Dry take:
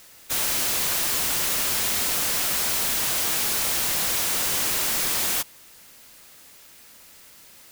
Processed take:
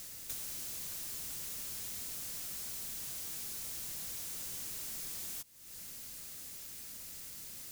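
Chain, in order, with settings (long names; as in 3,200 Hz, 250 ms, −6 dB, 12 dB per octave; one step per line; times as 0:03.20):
drawn EQ curve 130 Hz 0 dB, 880 Hz −12 dB, 3,100 Hz −8 dB, 6,500 Hz −2 dB
downward compressor 8 to 1, threshold −47 dBFS, peak gain reduction 21 dB
level +5.5 dB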